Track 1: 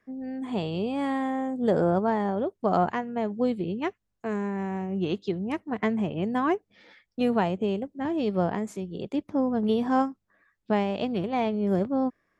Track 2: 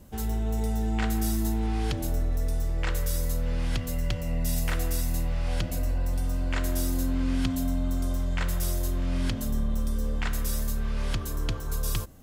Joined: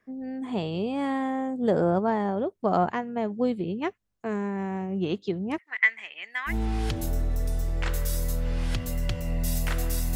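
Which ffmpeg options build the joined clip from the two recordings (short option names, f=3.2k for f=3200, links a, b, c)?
-filter_complex "[0:a]asettb=1/sr,asplit=3[a][b][c];[a]atrim=end=5.584[d];[b]atrim=start=5.58:end=6.54,asetpts=PTS-STARTPTS,afade=t=in:d=0.004:c=qsin,afade=t=out:st=0.956:d=0.004:c=qsin,highpass=f=2k:t=q:w=6.9[e];[c]atrim=start=6.536[f];[d][e]acrossfade=d=0.004:c1=hsin:c2=qsin[g];[g][f]acrossfade=d=0.004:c1=qsin:c2=hsin,apad=whole_dur=10.15,atrim=end=10.15,atrim=end=6.54,asetpts=PTS-STARTPTS[h];[1:a]atrim=start=1.47:end=5.16,asetpts=PTS-STARTPTS[i];[h][i]acrossfade=d=0.08:c1=tri:c2=tri"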